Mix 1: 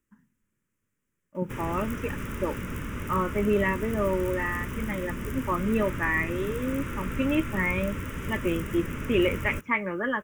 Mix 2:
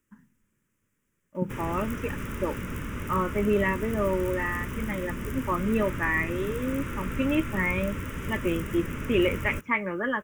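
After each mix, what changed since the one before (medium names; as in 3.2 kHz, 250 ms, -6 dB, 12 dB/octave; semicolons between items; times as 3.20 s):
first voice +5.5 dB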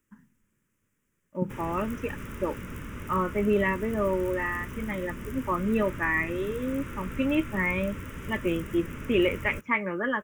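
background -4.5 dB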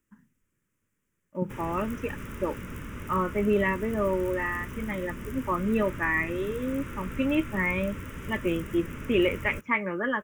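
reverb: off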